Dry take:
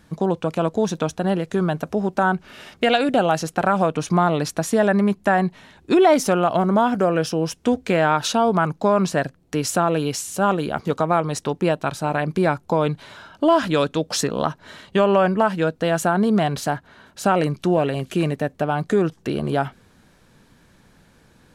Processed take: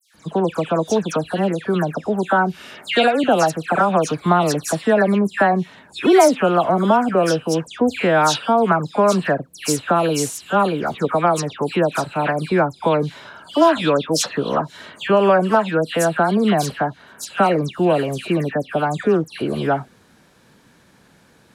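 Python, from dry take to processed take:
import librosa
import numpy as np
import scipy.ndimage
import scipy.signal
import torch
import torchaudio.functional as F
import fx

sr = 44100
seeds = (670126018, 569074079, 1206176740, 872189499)

y = fx.highpass(x, sr, hz=160.0, slope=6)
y = fx.dispersion(y, sr, late='lows', ms=146.0, hz=2600.0)
y = y * librosa.db_to_amplitude(3.0)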